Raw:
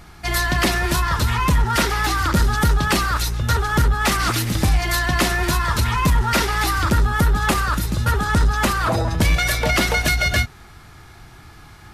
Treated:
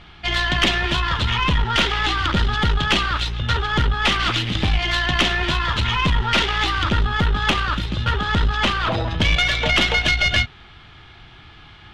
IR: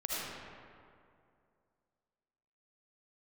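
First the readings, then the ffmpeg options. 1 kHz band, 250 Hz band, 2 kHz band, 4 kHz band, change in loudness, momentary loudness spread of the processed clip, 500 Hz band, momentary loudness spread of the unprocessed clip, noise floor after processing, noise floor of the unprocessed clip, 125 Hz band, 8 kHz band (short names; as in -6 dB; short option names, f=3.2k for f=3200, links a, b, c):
-1.5 dB, -2.5 dB, +1.0 dB, +5.5 dB, 0.0 dB, 5 LU, -2.5 dB, 3 LU, -45 dBFS, -44 dBFS, -2.5 dB, -9.5 dB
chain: -af "acrusher=bits=9:mode=log:mix=0:aa=0.000001,lowpass=f=3.2k:t=q:w=4.4,aeval=exprs='(tanh(2.24*val(0)+0.55)-tanh(0.55))/2.24':c=same"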